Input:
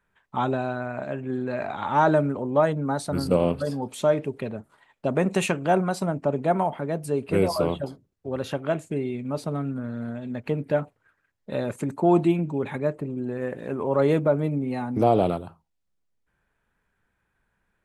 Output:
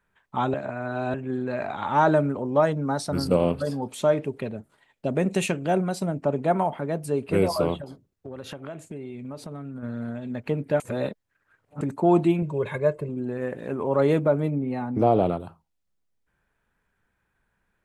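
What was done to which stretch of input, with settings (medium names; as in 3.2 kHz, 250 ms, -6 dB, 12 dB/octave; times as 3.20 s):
0.54–1.14 s: reverse
2.45–3.25 s: peaking EQ 5.4 kHz +10.5 dB 0.24 oct
4.49–6.21 s: peaking EQ 1.1 kHz -7.5 dB 1.2 oct
7.75–9.83 s: compression, threshold -33 dBFS
10.80–11.81 s: reverse
12.42–13.09 s: comb 1.9 ms, depth 72%
14.50–15.40 s: treble shelf 3.7 kHz -11.5 dB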